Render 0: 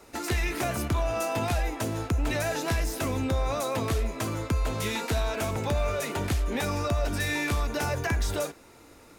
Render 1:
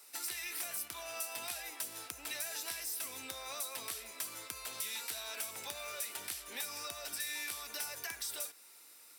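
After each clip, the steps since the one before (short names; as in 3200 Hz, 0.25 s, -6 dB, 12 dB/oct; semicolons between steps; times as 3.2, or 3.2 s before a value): differentiator; notch 6700 Hz, Q 7.4; compressor 2.5:1, threshold -42 dBFS, peak gain reduction 6.5 dB; gain +3.5 dB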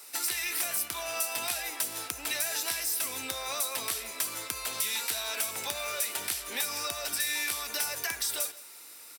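echo 0.167 s -19.5 dB; gain +9 dB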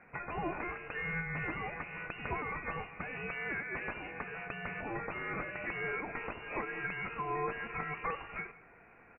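inverted band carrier 2800 Hz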